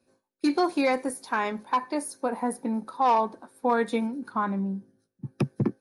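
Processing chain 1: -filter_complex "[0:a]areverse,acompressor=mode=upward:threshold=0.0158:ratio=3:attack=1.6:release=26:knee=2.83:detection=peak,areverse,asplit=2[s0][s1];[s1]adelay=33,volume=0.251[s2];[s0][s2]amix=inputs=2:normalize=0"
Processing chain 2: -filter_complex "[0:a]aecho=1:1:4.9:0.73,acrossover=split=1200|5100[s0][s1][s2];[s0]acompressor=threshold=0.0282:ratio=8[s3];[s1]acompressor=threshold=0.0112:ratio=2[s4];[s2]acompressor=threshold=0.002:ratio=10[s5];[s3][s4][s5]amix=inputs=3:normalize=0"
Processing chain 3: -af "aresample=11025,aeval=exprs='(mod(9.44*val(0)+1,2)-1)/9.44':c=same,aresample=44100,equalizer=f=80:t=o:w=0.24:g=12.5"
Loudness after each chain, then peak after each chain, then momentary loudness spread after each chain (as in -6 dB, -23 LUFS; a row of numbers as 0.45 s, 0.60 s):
-27.5 LUFS, -34.5 LUFS, -28.0 LUFS; -11.5 dBFS, -17.5 dBFS, -14.5 dBFS; 9 LU, 7 LU, 9 LU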